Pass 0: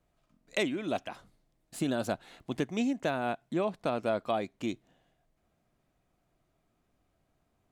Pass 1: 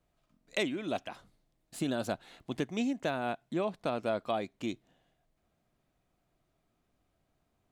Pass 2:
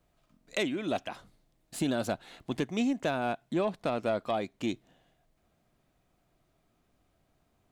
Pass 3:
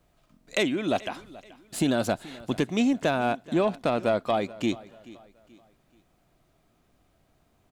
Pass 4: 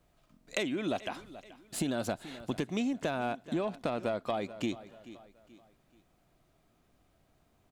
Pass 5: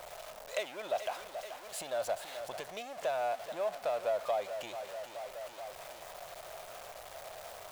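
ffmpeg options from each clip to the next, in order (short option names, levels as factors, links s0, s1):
-af "equalizer=f=3700:w=1.5:g=2,volume=0.794"
-filter_complex "[0:a]asplit=2[s0][s1];[s1]alimiter=limit=0.0631:level=0:latency=1:release=455,volume=1.06[s2];[s0][s2]amix=inputs=2:normalize=0,asoftclip=type=tanh:threshold=0.141,volume=0.841"
-af "aecho=1:1:431|862|1293:0.1|0.038|0.0144,volume=1.88"
-af "acompressor=threshold=0.0501:ratio=6,volume=0.708"
-af "aeval=exprs='val(0)+0.5*0.0188*sgn(val(0))':c=same,lowshelf=f=400:t=q:w=3:g=-13.5,volume=0.447"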